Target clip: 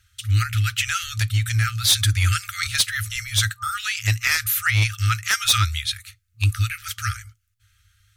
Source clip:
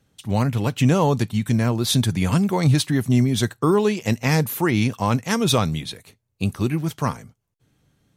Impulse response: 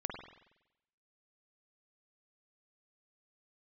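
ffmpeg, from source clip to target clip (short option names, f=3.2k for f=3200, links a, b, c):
-af "afftfilt=real='re*(1-between(b*sr/4096,110,1200))':imag='im*(1-between(b*sr/4096,110,1200))':win_size=4096:overlap=0.75,aeval=exprs='0.398*(cos(1*acos(clip(val(0)/0.398,-1,1)))-cos(1*PI/2))+0.0708*(cos(5*acos(clip(val(0)/0.398,-1,1)))-cos(5*PI/2))':c=same,volume=2.5dB"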